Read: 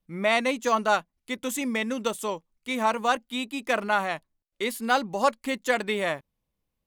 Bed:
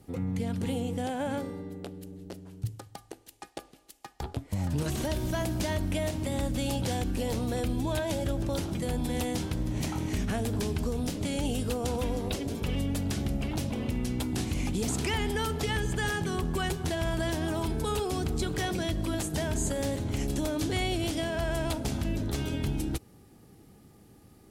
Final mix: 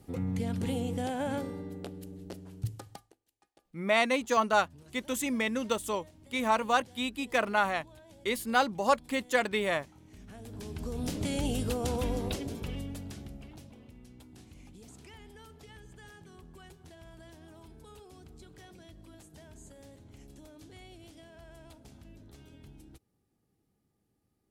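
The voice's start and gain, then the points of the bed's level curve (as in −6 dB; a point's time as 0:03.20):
3.65 s, −2.5 dB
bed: 0:02.93 −1 dB
0:03.18 −24.5 dB
0:10.04 −24.5 dB
0:11.13 −1 dB
0:12.23 −1 dB
0:13.90 −22 dB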